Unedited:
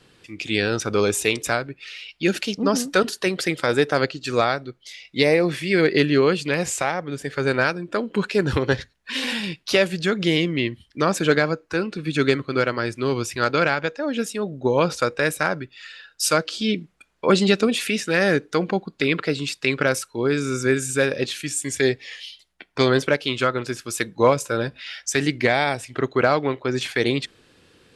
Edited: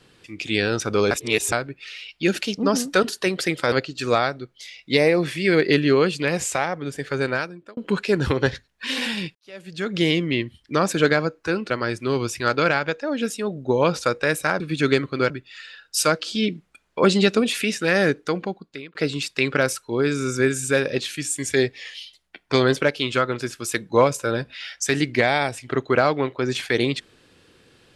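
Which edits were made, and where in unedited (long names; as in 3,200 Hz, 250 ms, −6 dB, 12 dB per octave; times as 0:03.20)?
0:01.11–0:01.52: reverse
0:03.72–0:03.98: remove
0:07.06–0:08.03: fade out equal-power
0:09.61–0:10.27: fade in quadratic
0:11.96–0:12.66: move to 0:15.56
0:18.36–0:19.21: fade out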